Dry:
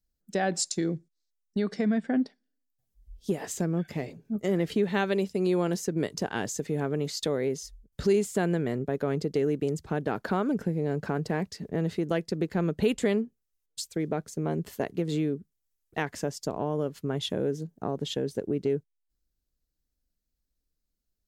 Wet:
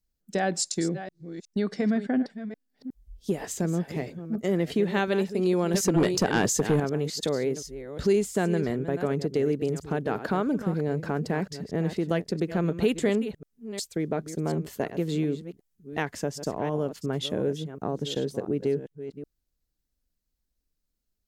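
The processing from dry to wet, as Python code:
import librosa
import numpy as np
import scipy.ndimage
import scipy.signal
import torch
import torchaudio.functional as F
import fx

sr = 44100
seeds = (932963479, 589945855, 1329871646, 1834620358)

y = fx.reverse_delay(x, sr, ms=363, wet_db=-11.5)
y = fx.fold_sine(y, sr, drive_db=4, ceiling_db=-16.5, at=(5.74, 6.8))
y = y * 10.0 ** (1.0 / 20.0)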